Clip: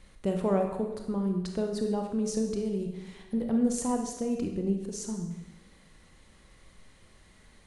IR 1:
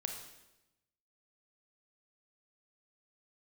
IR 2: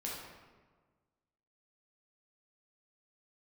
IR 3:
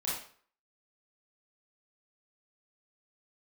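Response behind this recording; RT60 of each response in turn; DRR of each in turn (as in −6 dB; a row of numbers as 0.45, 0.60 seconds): 1; 0.95, 1.4, 0.50 seconds; 3.5, −5.0, −8.0 decibels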